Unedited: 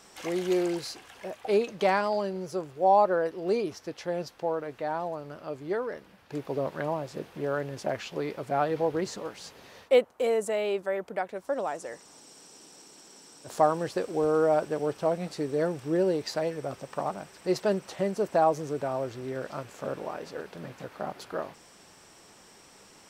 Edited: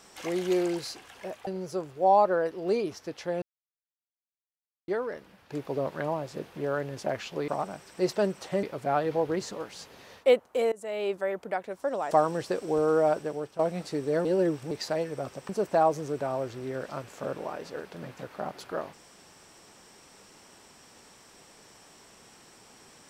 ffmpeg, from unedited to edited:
ffmpeg -i in.wav -filter_complex "[0:a]asplit=12[link_01][link_02][link_03][link_04][link_05][link_06][link_07][link_08][link_09][link_10][link_11][link_12];[link_01]atrim=end=1.472[link_13];[link_02]atrim=start=2.268:end=4.22,asetpts=PTS-STARTPTS,afade=type=out:start_time=1.948:duration=0.004:curve=hsin[link_14];[link_03]atrim=start=4.22:end=5.68,asetpts=PTS-STARTPTS,volume=0[link_15];[link_04]atrim=start=5.68:end=8.282,asetpts=PTS-STARTPTS,afade=type=in:duration=0.004:curve=hsin[link_16];[link_05]atrim=start=16.948:end=18.102[link_17];[link_06]atrim=start=8.278:end=10.37,asetpts=PTS-STARTPTS,afade=type=out:start_time=2.088:duration=0.004:curve=hsin:silence=0.0794328[link_18];[link_07]atrim=start=10.37:end=11.762,asetpts=PTS-STARTPTS,afade=type=in:duration=0.38:silence=0.0794328[link_19];[link_08]atrim=start=13.568:end=15.05,asetpts=PTS-STARTPTS,afade=type=out:start_time=1.002:duration=0.48:silence=0.251189[link_20];[link_09]atrim=start=15.05:end=15.712,asetpts=PTS-STARTPTS,afade=type=in:duration=0.004:curve=hsin:silence=0.251189[link_21];[link_10]atrim=start=15.708:end=16.172,asetpts=PTS-STARTPTS,areverse[link_22];[link_11]atrim=start=16.168:end=16.952[link_23];[link_12]atrim=start=18.098[link_24];[link_14][link_15][link_16]concat=n=3:v=0:a=1[link_25];[link_13][link_25]acrossfade=duration=0.004:curve1=hsin:curve2=hsin[link_26];[link_26][link_17]acrossfade=duration=0.004:curve1=hsin:curve2=hsin[link_27];[link_18][link_19]concat=n=2:v=0:a=1[link_28];[link_27][link_28]acrossfade=duration=0.004:curve1=hsin:curve2=hsin[link_29];[link_20][link_21]concat=n=2:v=0:a=1[link_30];[link_29][link_30]acrossfade=duration=0.004:curve1=hsin:curve2=hsin[link_31];[link_31][link_22]acrossfade=duration=0.004:curve1=hsin:curve2=hsin[link_32];[link_32][link_23]acrossfade=duration=0.004:curve1=hsin:curve2=hsin[link_33];[link_33][link_24]acrossfade=duration=0.004:curve1=hsin:curve2=hsin" out.wav

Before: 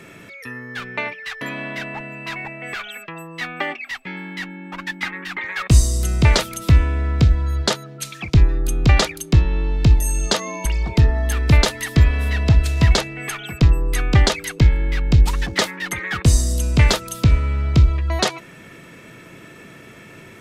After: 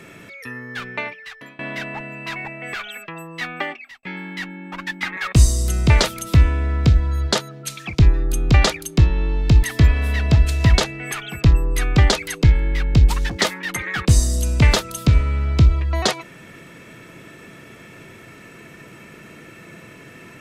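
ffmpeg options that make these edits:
ffmpeg -i in.wav -filter_complex "[0:a]asplit=5[link_01][link_02][link_03][link_04][link_05];[link_01]atrim=end=1.59,asetpts=PTS-STARTPTS,afade=type=out:start_time=0.87:duration=0.72:silence=0.0749894[link_06];[link_02]atrim=start=1.59:end=4.03,asetpts=PTS-STARTPTS,afade=type=in:duration=0.004:curve=hsin:silence=0.0749894,afade=type=out:start_time=1.97:duration=0.47[link_07];[link_03]atrim=start=4.03:end=5.172,asetpts=PTS-STARTPTS,afade=type=in:duration=0.004:curve=hsin[link_08];[link_04]atrim=start=5.518:end=9.982[link_09];[link_05]atrim=start=11.798[link_10];[link_06][link_07][link_08]concat=n=3:v=0:a=1[link_11];[link_11][link_09]acrossfade=duration=0.004:curve1=hsin:curve2=hsin[link_12];[link_12][link_10]acrossfade=duration=0.004:curve1=hsin:curve2=hsin" out.wav

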